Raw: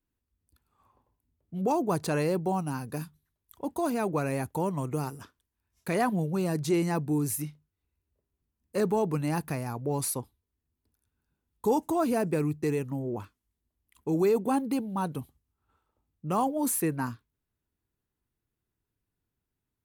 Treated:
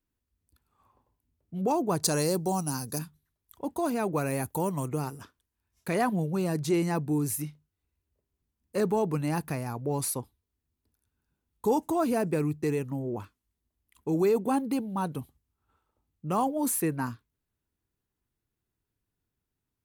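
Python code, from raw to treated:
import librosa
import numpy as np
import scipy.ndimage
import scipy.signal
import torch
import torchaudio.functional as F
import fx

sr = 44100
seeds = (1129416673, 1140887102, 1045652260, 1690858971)

y = fx.high_shelf_res(x, sr, hz=3800.0, db=11.5, q=1.5, at=(2.03, 2.99))
y = fx.high_shelf(y, sr, hz=fx.line((4.13, 11000.0), (4.87, 5900.0)), db=11.5, at=(4.13, 4.87), fade=0.02)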